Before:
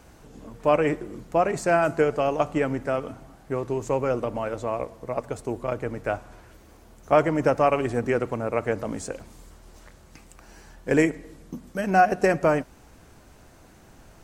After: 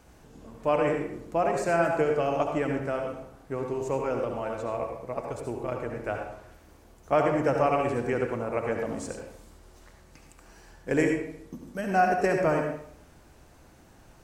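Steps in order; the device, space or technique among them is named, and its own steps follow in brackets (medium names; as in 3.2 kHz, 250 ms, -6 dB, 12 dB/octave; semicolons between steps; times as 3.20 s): bathroom (reverberation RT60 0.65 s, pre-delay 65 ms, DRR 2.5 dB); trim -5 dB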